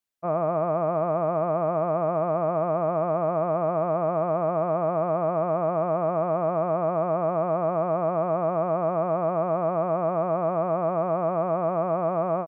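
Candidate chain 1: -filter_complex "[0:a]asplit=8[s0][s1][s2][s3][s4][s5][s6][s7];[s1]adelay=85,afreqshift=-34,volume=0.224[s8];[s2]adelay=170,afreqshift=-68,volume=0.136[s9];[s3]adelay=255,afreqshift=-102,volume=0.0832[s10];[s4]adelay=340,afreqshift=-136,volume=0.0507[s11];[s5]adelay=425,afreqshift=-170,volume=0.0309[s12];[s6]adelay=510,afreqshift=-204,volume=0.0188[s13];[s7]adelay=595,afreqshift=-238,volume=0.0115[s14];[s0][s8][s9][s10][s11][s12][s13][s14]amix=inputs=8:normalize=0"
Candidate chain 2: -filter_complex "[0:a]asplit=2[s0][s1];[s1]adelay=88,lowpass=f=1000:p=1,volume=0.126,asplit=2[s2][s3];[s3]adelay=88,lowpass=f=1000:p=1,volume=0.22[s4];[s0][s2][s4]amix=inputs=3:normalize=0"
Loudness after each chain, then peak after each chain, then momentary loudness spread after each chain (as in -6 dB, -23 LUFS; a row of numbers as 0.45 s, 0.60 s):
-25.0 LUFS, -25.0 LUFS; -12.5 dBFS, -14.0 dBFS; 0 LU, 0 LU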